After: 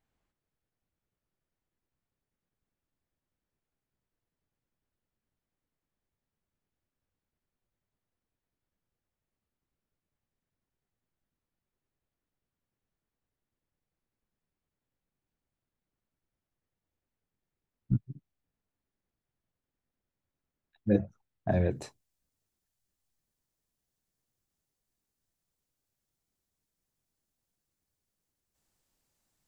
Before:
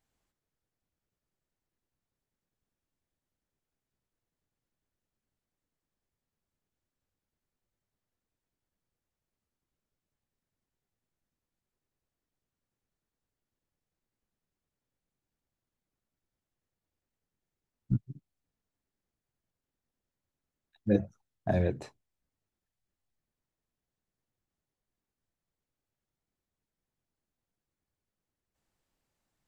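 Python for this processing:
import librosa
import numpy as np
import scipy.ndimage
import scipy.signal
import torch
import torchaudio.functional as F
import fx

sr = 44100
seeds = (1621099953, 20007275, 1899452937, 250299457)

y = fx.bass_treble(x, sr, bass_db=1, treble_db=fx.steps((0.0, -9.0), (21.7, 8.0)))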